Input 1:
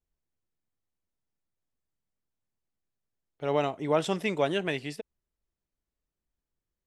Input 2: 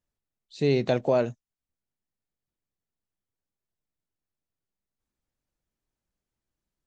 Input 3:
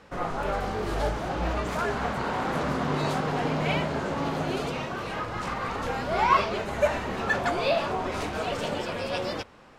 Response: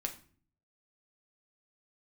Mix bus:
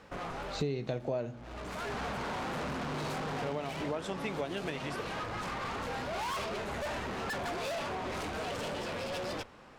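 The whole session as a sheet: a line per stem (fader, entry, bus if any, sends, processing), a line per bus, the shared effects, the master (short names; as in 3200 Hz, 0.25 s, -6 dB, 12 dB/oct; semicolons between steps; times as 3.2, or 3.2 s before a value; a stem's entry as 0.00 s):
-2.5 dB, 0.00 s, no send, dry
-2.0 dB, 0.00 s, send -4 dB, harmonic-percussive split harmonic +5 dB
+0.5 dB, 0.00 s, no send, tube stage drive 34 dB, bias 0.55; auto duck -11 dB, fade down 1.40 s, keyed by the second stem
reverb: on, RT60 0.45 s, pre-delay 6 ms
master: compressor 6:1, threshold -32 dBFS, peak gain reduction 19 dB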